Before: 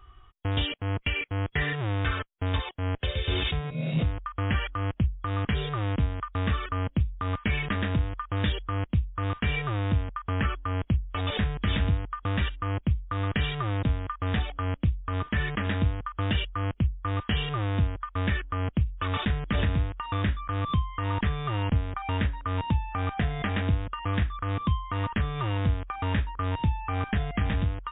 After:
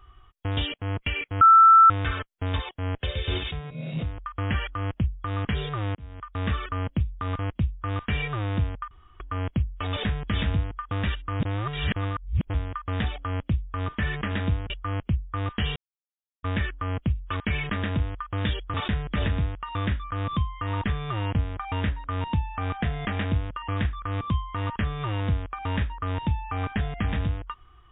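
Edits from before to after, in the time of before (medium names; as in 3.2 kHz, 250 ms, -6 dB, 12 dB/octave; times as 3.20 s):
1.41–1.90 s: bleep 1.33 kHz -10 dBFS
3.38–4.18 s: gain -4 dB
5.95–6.46 s: fade in
7.39–8.73 s: move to 19.11 s
10.25–10.54 s: room tone
12.74–13.88 s: reverse
16.04–16.41 s: delete
17.47–18.14 s: mute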